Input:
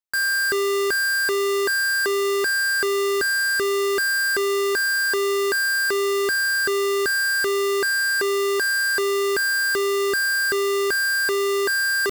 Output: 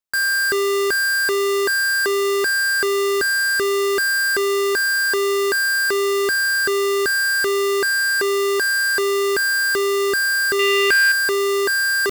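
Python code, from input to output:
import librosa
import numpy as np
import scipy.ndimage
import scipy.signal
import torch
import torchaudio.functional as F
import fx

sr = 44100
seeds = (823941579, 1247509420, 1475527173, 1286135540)

y = fx.peak_eq(x, sr, hz=2500.0, db=15.0, octaves=0.87, at=(10.59, 11.12))
y = F.gain(torch.from_numpy(y), 2.5).numpy()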